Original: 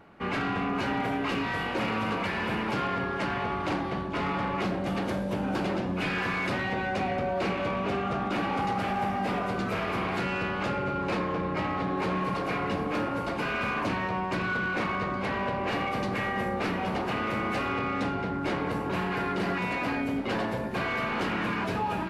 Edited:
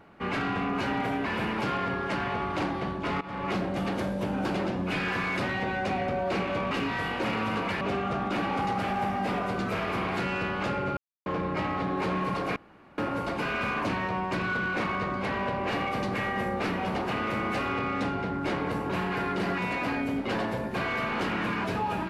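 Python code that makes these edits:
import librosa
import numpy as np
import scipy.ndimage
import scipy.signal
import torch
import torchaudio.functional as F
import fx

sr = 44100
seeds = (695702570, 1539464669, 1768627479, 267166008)

y = fx.edit(x, sr, fx.move(start_s=1.26, length_s=1.1, to_s=7.81),
    fx.fade_in_from(start_s=4.31, length_s=0.29, floor_db=-17.5),
    fx.silence(start_s=10.97, length_s=0.29),
    fx.room_tone_fill(start_s=12.56, length_s=0.42), tone=tone)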